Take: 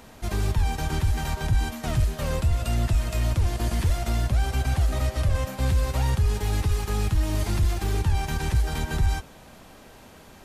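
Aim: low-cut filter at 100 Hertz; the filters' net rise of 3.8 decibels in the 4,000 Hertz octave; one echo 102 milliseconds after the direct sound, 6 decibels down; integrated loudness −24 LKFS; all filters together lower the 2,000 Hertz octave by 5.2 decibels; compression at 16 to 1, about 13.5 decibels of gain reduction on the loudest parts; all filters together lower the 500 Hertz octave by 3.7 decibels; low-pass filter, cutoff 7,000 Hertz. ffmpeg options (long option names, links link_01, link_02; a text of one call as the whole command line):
ffmpeg -i in.wav -af "highpass=100,lowpass=7000,equalizer=frequency=500:width_type=o:gain=-4.5,equalizer=frequency=2000:width_type=o:gain=-9,equalizer=frequency=4000:width_type=o:gain=8,acompressor=threshold=-36dB:ratio=16,aecho=1:1:102:0.501,volume=16dB" out.wav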